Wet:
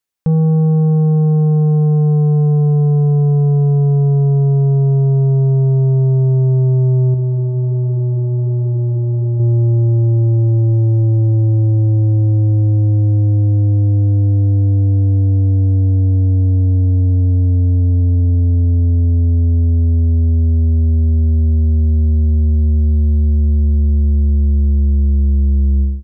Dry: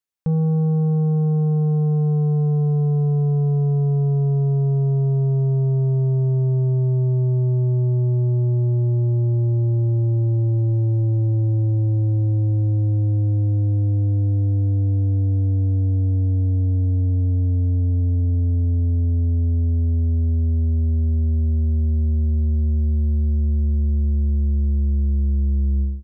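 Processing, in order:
0:07.14–0:09.40: flanger 1.3 Hz, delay 6.2 ms, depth 5.4 ms, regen −72%
level +6.5 dB

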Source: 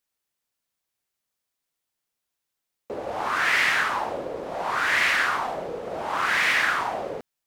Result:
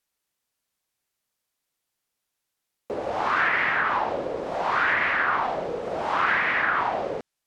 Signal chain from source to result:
treble cut that deepens with the level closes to 1,600 Hz, closed at −18.5 dBFS
level +2.5 dB

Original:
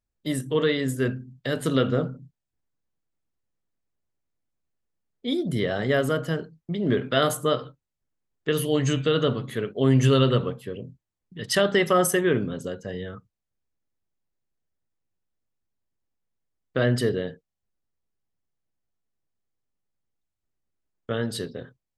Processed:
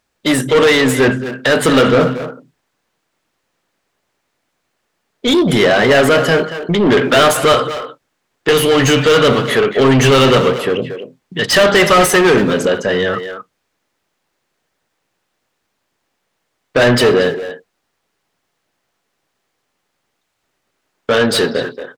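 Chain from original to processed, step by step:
mid-hump overdrive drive 27 dB, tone 3,500 Hz, clips at −8 dBFS
far-end echo of a speakerphone 230 ms, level −8 dB
level +5.5 dB

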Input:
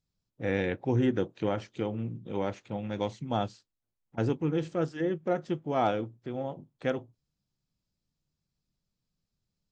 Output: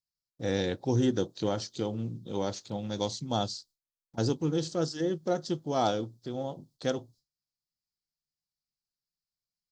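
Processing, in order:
high shelf with overshoot 3,300 Hz +11.5 dB, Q 3
noise gate with hold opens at −56 dBFS

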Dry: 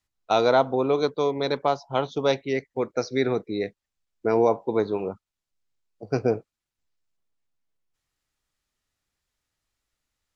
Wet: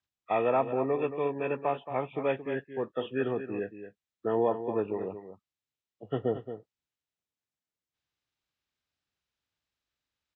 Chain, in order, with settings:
hearing-aid frequency compression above 1,100 Hz 1.5 to 1
high-pass filter 71 Hz
single-tap delay 224 ms −10.5 dB
level −6.5 dB

